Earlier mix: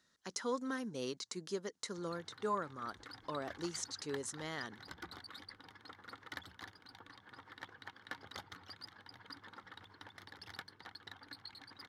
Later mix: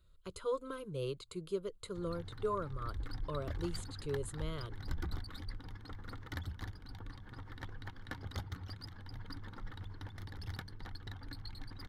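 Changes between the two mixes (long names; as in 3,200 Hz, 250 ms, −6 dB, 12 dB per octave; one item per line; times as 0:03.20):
speech: add phaser with its sweep stopped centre 1,200 Hz, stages 8
master: remove meter weighting curve A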